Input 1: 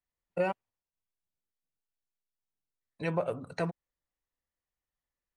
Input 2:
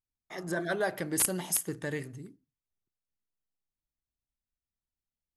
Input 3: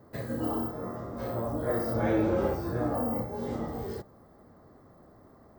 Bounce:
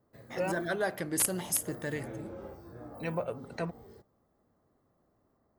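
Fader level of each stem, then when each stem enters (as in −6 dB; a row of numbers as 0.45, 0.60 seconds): −3.0, −1.0, −17.0 decibels; 0.00, 0.00, 0.00 seconds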